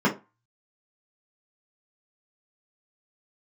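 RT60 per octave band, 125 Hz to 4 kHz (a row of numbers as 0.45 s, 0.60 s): 0.30 s, 0.25 s, 0.25 s, 0.30 s, 0.25 s, 0.15 s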